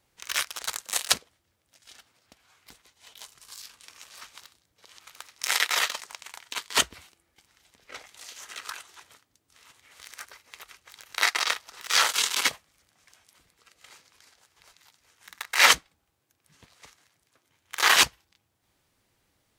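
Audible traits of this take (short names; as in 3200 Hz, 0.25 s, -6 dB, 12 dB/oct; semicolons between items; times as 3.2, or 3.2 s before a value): noise floor -74 dBFS; spectral tilt 0.0 dB/oct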